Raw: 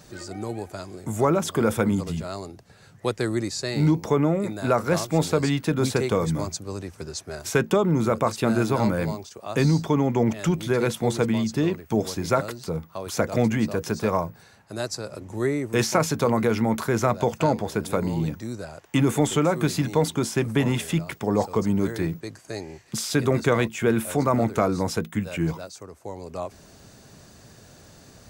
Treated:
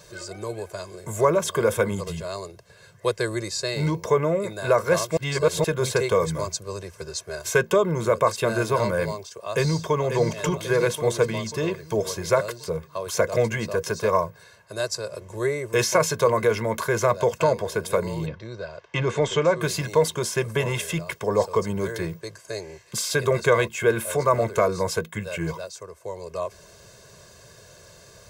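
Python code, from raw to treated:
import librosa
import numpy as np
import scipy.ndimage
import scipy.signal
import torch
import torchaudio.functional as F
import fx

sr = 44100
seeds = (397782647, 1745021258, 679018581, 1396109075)

y = fx.echo_throw(x, sr, start_s=9.17, length_s=0.86, ms=540, feedback_pct=55, wet_db=-7.5)
y = fx.lowpass(y, sr, hz=fx.line((18.25, 4000.0), (19.6, 6700.0)), slope=24, at=(18.25, 19.6), fade=0.02)
y = fx.edit(y, sr, fx.reverse_span(start_s=5.17, length_s=0.47), tone=tone)
y = fx.low_shelf(y, sr, hz=210.0, db=-7.5)
y = y + 0.9 * np.pad(y, (int(1.9 * sr / 1000.0), 0))[:len(y)]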